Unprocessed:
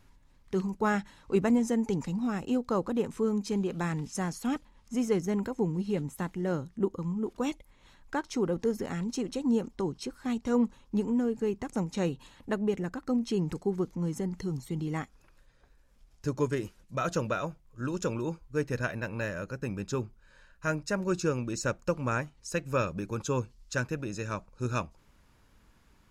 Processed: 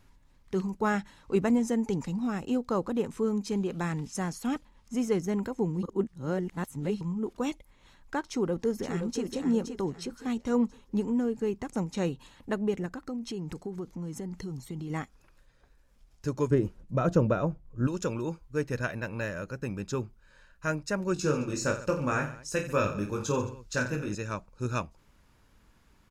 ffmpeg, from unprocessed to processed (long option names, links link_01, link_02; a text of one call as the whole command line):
ffmpeg -i in.wav -filter_complex "[0:a]asplit=2[link_01][link_02];[link_02]afade=type=in:start_time=8.3:duration=0.01,afade=type=out:start_time=9.23:duration=0.01,aecho=0:1:520|1040|1560|2080:0.421697|0.147594|0.0516578|0.0180802[link_03];[link_01][link_03]amix=inputs=2:normalize=0,asettb=1/sr,asplit=3[link_04][link_05][link_06];[link_04]atrim=end=12.864[link_07];[link_05]atrim=start=12.86:end=14.9,asetpts=PTS-STARTPTS,afade=type=in:duration=0.004:curve=qsin,afade=type=out:start_time=2.036:duration=0.004:curve=qsin,acompressor=threshold=-34dB:ratio=3:attack=3.2:release=140:knee=1:detection=peak[link_08];[link_06]atrim=start=14.896[link_09];[link_07][link_08]acrossfade=duration=0.004:curve1=hsin:curve2=qsin[link_10];[link_10][link_09]acrossfade=duration=0.004:curve1=qsin:curve2=hsin,asettb=1/sr,asplit=3[link_11][link_12][link_13];[link_11]atrim=end=16.504[link_14];[link_12]atrim=start=16.5:end=17.87,asetpts=PTS-STARTPTS,afade=type=in:duration=0.004:curve=qsin,afade=type=out:start_time=1.366:duration=0.004:curve=qsin,tiltshelf=frequency=1100:gain=9[link_15];[link_13]atrim=start=17.866[link_16];[link_14][link_15]acrossfade=duration=0.004:curve1=hsin:curve2=qsin[link_17];[link_17][link_16]acrossfade=duration=0.004:curve1=qsin:curve2=hsin,asettb=1/sr,asplit=3[link_18][link_19][link_20];[link_18]atrim=end=21.144[link_21];[link_19]atrim=start=21.14:end=24.15,asetpts=PTS-STARTPTS,afade=type=in:duration=0.004:curve=qsin,afade=type=out:start_time=3.006:duration=0.004:curve=qsin,aecho=1:1:20|48|87.2|142.1|218.9:0.631|0.398|0.251|0.158|0.1,atrim=end_sample=132741[link_22];[link_20]atrim=start=24.146[link_23];[link_21][link_22]acrossfade=duration=0.004:curve1=hsin:curve2=qsin[link_24];[link_24][link_23]acrossfade=duration=0.004:curve1=qsin:curve2=hsin,asplit=3[link_25][link_26][link_27];[link_25]atrim=end=5.832[link_28];[link_26]atrim=start=5.828:end=7.012,asetpts=PTS-STARTPTS,areverse[link_29];[link_27]atrim=start=7.008[link_30];[link_28][link_29]acrossfade=duration=0.004:curve1=hsin:curve2=hsin[link_31];[link_31][link_30]acrossfade=duration=0.004:curve1=hsin:curve2=hsin" out.wav